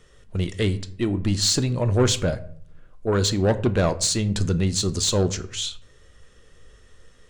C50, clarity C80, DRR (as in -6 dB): 16.5 dB, 19.5 dB, 10.0 dB